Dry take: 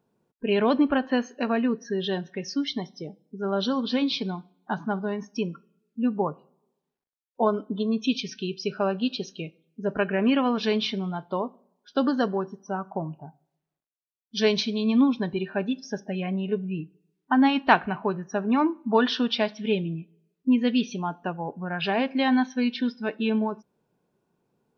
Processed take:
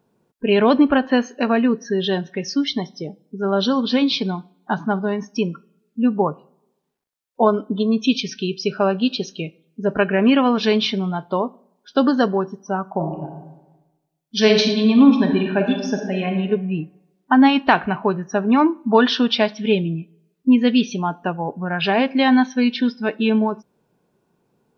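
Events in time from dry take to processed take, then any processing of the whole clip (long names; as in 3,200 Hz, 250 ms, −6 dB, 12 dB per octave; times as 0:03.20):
0:12.96–0:16.33: thrown reverb, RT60 1.1 s, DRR 3 dB
whole clip: boost into a limiter +8 dB; level −1 dB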